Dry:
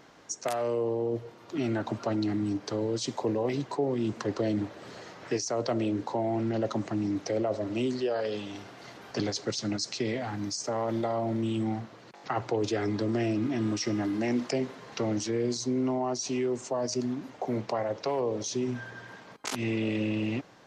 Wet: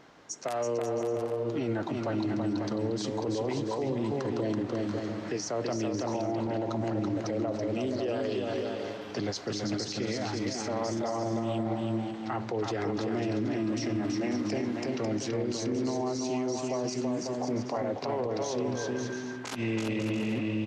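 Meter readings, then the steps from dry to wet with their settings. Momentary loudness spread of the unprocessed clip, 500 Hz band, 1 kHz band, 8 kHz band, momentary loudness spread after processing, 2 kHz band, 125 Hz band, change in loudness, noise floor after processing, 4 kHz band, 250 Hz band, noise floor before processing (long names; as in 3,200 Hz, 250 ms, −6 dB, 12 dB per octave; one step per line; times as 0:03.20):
8 LU, −0.5 dB, −0.5 dB, −2.5 dB, 3 LU, −0.5 dB, −0.5 dB, −1.0 dB, −38 dBFS, −1.5 dB, −0.5 dB, −51 dBFS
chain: on a send: bouncing-ball delay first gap 330 ms, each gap 0.65×, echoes 5
on the sum: brickwall limiter −22.5 dBFS, peak gain reduction 8 dB
high-shelf EQ 6,800 Hz −6.5 dB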